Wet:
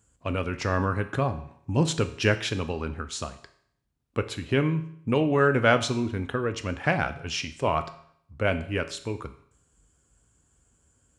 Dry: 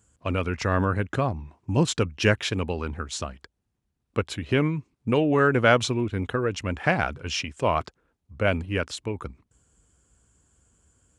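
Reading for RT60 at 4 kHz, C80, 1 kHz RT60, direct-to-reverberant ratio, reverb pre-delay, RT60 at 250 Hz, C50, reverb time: 0.65 s, 16.5 dB, 0.65 s, 9.0 dB, 7 ms, 0.65 s, 13.5 dB, 0.65 s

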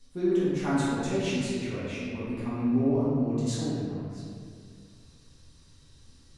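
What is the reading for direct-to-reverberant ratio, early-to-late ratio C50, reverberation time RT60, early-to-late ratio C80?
-11.0 dB, -3.5 dB, 2.2 s, -1.5 dB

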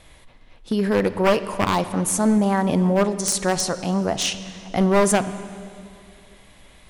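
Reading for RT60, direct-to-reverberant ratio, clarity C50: 2.4 s, 11.5 dB, 13.0 dB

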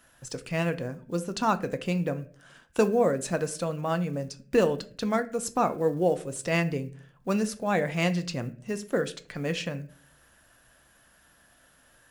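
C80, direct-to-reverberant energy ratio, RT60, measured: 21.0 dB, 9.0 dB, 0.45 s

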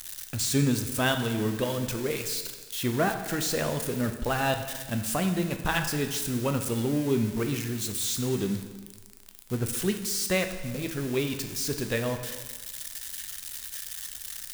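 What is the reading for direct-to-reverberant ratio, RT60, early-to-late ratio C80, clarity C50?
6.0 dB, 1.4 s, 10.0 dB, 8.0 dB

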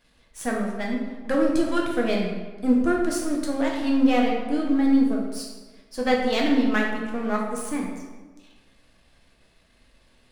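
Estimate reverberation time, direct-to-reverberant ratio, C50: 1.3 s, -1.5 dB, 2.5 dB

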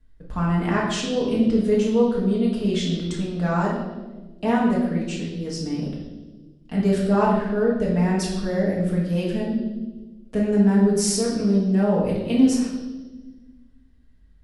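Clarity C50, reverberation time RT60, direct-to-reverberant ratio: 2.5 dB, 1.3 s, -6.0 dB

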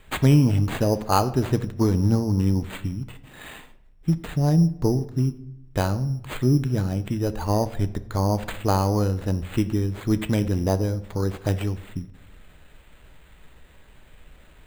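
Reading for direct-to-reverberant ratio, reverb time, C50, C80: 11.0 dB, 0.80 s, 15.5 dB, 18.5 dB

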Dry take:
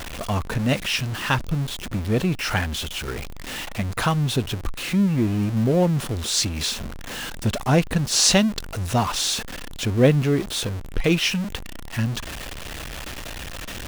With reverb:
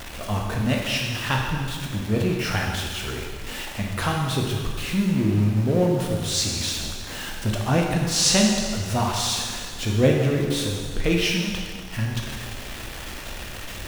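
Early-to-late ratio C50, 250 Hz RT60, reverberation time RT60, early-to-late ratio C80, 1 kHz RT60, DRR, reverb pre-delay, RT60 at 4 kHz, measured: 2.0 dB, 1.7 s, 1.8 s, 3.5 dB, 1.8 s, -0.5 dB, 12 ms, 1.7 s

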